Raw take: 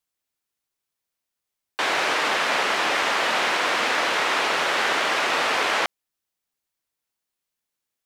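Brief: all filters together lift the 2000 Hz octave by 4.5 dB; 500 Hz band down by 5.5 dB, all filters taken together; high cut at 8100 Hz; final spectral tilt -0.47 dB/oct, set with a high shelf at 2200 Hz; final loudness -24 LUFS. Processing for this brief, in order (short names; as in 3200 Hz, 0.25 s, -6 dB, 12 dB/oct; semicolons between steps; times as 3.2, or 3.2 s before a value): LPF 8100 Hz; bell 500 Hz -7.5 dB; bell 2000 Hz +8 dB; high shelf 2200 Hz -4 dB; gain -5 dB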